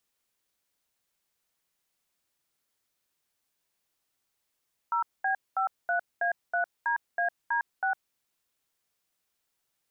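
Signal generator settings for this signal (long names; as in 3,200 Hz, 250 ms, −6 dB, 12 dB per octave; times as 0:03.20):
touch tones "0B53A3DAD6", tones 106 ms, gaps 217 ms, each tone −27 dBFS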